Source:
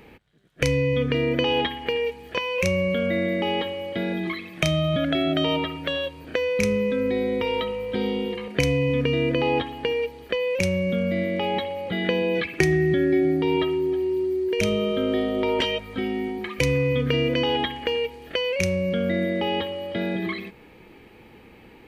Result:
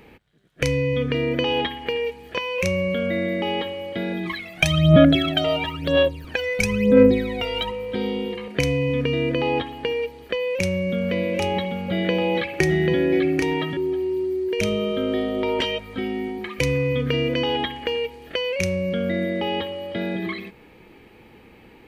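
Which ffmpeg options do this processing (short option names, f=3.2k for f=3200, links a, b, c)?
-filter_complex "[0:a]asplit=3[a][b][c];[a]afade=t=out:st=4.25:d=0.02[d];[b]aphaser=in_gain=1:out_gain=1:delay=1.5:decay=0.78:speed=1:type=sinusoidal,afade=t=in:st=4.25:d=0.02,afade=t=out:st=7.7:d=0.02[e];[c]afade=t=in:st=7.7:d=0.02[f];[d][e][f]amix=inputs=3:normalize=0,asettb=1/sr,asplit=3[g][h][i];[g]atrim=end=10.234[j];[h]atrim=start=10.23:end=13.77,asetpts=PTS-STARTPTS,afade=t=in:d=0.004:c=qsin,afade=t=out:st=3.536:d=0.004:c=qsin,aecho=1:1:789:0.596,atrim=end_sample=156114[k];[i]atrim=start=13.766[l];[j][k]acrossfade=d=0.004:c1=hsin:c2=qsin[m];[m][l]acrossfade=d=0.004:c1=qsin:c2=hsin"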